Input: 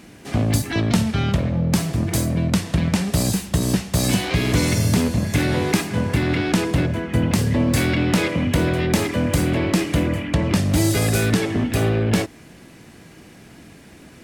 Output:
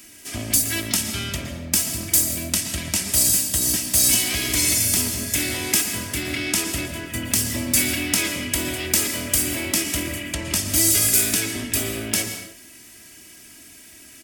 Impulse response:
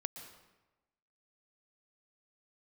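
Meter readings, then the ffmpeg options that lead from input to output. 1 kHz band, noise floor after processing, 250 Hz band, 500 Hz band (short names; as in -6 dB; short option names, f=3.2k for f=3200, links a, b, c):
-8.0 dB, -46 dBFS, -9.5 dB, -9.0 dB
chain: -filter_complex "[0:a]equalizer=f=4k:t=o:w=0.26:g=-6.5,aecho=1:1:3.1:0.57,acrossover=split=610|1100[a][b][c];[c]crystalizer=i=9.5:c=0[d];[a][b][d]amix=inputs=3:normalize=0[e];[1:a]atrim=start_sample=2205,afade=t=out:st=0.36:d=0.01,atrim=end_sample=16317[f];[e][f]afir=irnorm=-1:irlink=0,volume=-9dB"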